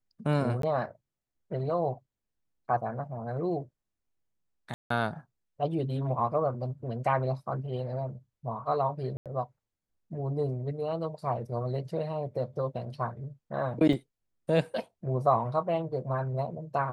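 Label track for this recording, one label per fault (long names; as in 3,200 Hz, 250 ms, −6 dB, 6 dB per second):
0.620000	0.630000	drop-out 13 ms
4.740000	4.900000	drop-out 164 ms
9.170000	9.260000	drop-out 87 ms
13.930000	13.930000	drop-out 3.5 ms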